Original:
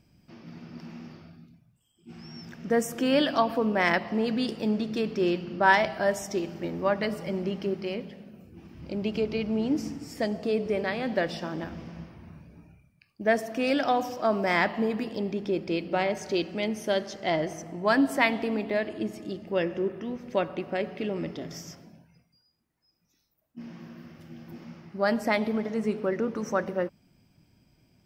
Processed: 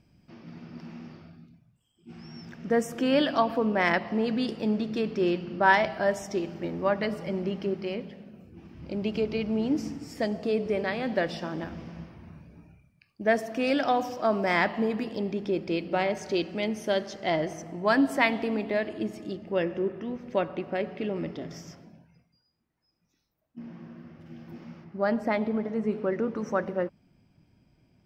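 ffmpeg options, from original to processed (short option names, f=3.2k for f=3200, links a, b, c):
-af "asetnsamples=n=441:p=0,asendcmd='8.92 lowpass f 7800;19.35 lowpass f 3400;23.59 lowpass f 1500;24.26 lowpass f 3700;24.84 lowpass f 1400;25.93 lowpass f 2600',lowpass=f=4.7k:p=1"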